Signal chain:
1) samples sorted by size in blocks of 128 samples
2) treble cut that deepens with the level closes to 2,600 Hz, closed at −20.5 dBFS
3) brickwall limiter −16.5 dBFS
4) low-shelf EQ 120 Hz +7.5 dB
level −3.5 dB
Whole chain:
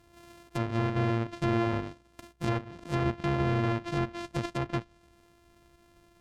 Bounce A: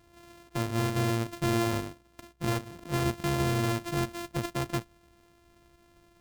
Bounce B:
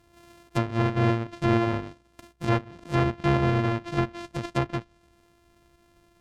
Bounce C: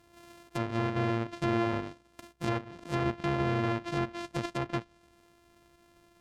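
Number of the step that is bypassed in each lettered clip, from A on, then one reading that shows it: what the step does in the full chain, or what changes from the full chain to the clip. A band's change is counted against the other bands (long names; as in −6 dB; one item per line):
2, 8 kHz band +12.5 dB
3, average gain reduction 2.0 dB
4, 125 Hz band −3.5 dB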